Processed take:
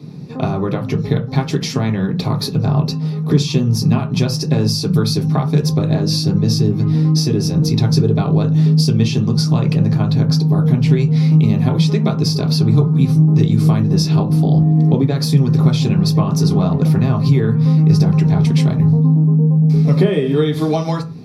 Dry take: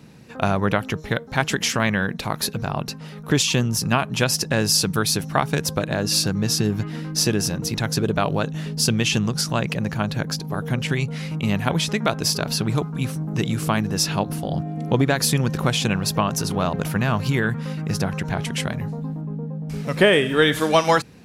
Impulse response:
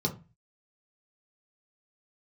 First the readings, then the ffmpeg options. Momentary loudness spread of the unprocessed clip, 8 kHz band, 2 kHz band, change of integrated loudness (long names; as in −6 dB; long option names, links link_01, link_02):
9 LU, −5.5 dB, −8.5 dB, +7.5 dB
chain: -filter_complex "[0:a]acompressor=threshold=-23dB:ratio=6[link_01];[1:a]atrim=start_sample=2205[link_02];[link_01][link_02]afir=irnorm=-1:irlink=0,volume=-3dB"